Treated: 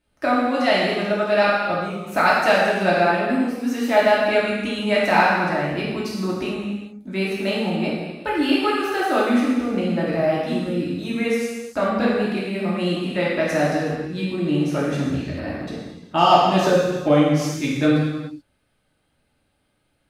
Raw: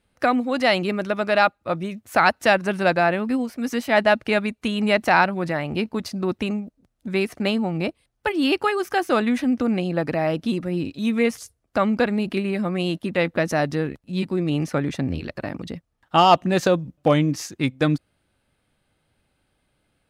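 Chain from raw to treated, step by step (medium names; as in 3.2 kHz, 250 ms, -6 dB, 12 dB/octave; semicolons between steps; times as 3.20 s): gated-style reverb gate 460 ms falling, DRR -6.5 dB; trim -6 dB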